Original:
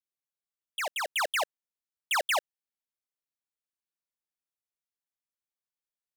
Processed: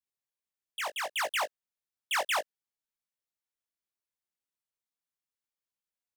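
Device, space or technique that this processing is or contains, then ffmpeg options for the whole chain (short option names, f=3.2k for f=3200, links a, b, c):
double-tracked vocal: -filter_complex "[0:a]asplit=2[a][b];[b]adelay=18,volume=-13.5dB[c];[a][c]amix=inputs=2:normalize=0,flanger=delay=17.5:depth=2.8:speed=1.6,volume=1dB"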